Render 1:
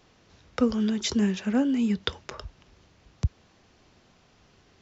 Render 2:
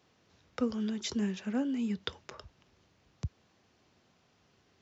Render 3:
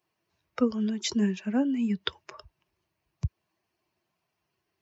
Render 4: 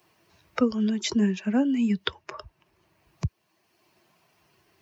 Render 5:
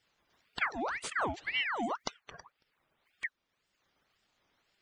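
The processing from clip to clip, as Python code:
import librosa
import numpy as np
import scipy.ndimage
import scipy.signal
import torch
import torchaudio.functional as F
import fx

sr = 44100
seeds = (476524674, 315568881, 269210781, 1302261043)

y1 = scipy.signal.sosfilt(scipy.signal.butter(2, 81.0, 'highpass', fs=sr, output='sos'), x)
y1 = F.gain(torch.from_numpy(y1), -8.0).numpy()
y2 = fx.bin_expand(y1, sr, power=1.5)
y2 = F.gain(torch.from_numpy(y2), 7.5).numpy()
y3 = fx.band_squash(y2, sr, depth_pct=40)
y3 = F.gain(torch.from_numpy(y3), 3.5).numpy()
y4 = fx.spec_quant(y3, sr, step_db=30)
y4 = fx.ring_lfo(y4, sr, carrier_hz=1500.0, swing_pct=70, hz=1.9)
y4 = F.gain(torch.from_numpy(y4), -7.0).numpy()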